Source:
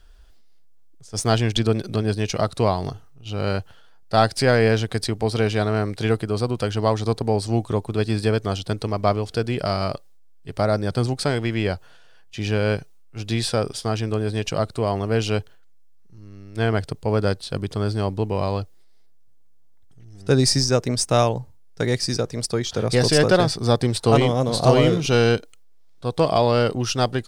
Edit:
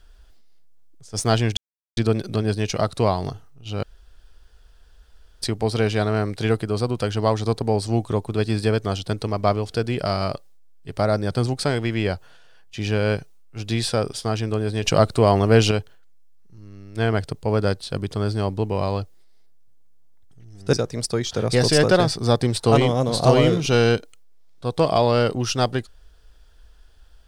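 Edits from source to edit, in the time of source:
1.57 insert silence 0.40 s
3.43–5.02 room tone
14.43–15.31 gain +6.5 dB
20.33–22.13 cut

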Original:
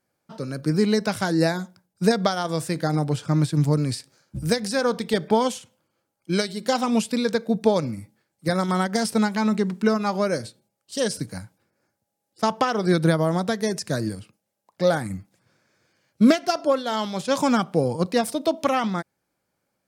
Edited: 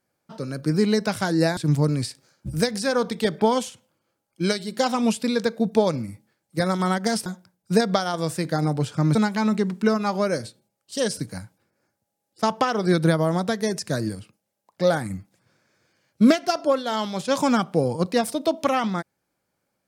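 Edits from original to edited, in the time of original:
1.57–3.46 move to 9.15

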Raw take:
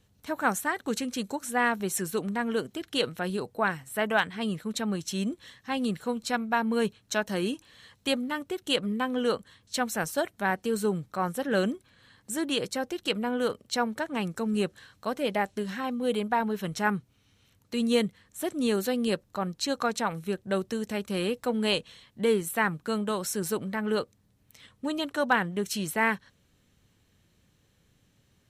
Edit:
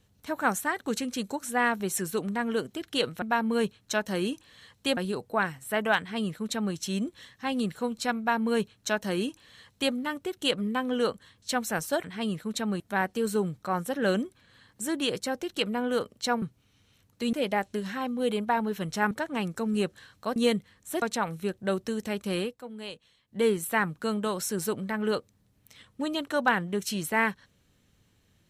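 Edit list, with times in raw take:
4.24–5 copy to 10.29
6.43–8.18 copy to 3.22
13.91–15.16 swap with 16.94–17.85
18.51–19.86 cut
21.23–22.27 dip -13.5 dB, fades 0.16 s

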